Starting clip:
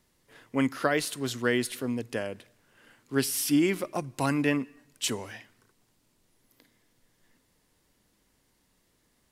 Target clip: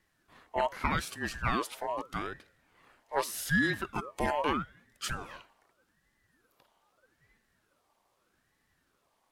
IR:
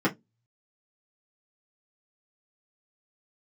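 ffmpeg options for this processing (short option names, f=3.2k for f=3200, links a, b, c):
-filter_complex "[0:a]afftfilt=real='real(if(between(b,1,1008),(2*floor((b-1)/48)+1)*48-b,b),0)':imag='imag(if(between(b,1,1008),(2*floor((b-1)/48)+1)*48-b,b),0)*if(between(b,1,1008),-1,1)':win_size=2048:overlap=0.75,highpass=f=78:w=0.5412,highpass=f=78:w=1.3066,bass=f=250:g=5,treble=f=4k:g=-5,asplit=2[a][b];[b]asoftclip=type=tanh:threshold=-17.5dB,volume=-7dB[c];[a][c]amix=inputs=2:normalize=0,aeval=exprs='val(0)*sin(2*PI*560*n/s+560*0.8/0.81*sin(2*PI*0.81*n/s))':c=same,volume=-4dB"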